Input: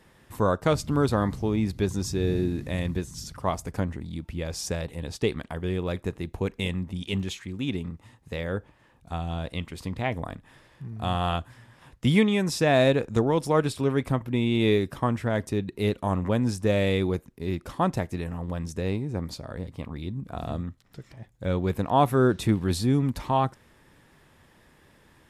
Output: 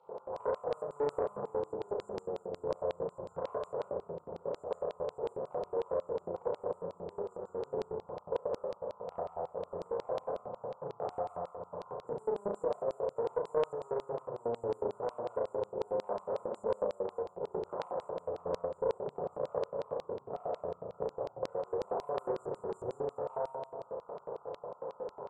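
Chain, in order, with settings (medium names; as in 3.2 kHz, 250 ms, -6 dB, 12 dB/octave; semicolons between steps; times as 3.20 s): spectral levelling over time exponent 0.6; brick-wall FIR band-stop 1.5–7 kHz; bass shelf 180 Hz -10 dB; level-controlled noise filter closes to 1.7 kHz, open at -16 dBFS; treble shelf 4.9 kHz -9.5 dB; static phaser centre 680 Hz, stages 4; simulated room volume 780 m³, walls furnished, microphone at 4.4 m; compression 10:1, threshold -29 dBFS, peak gain reduction 19.5 dB; flutter echo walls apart 5.9 m, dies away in 0.88 s; LFO band-pass square 5.5 Hz 520–4200 Hz; loudspeaker Doppler distortion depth 0.36 ms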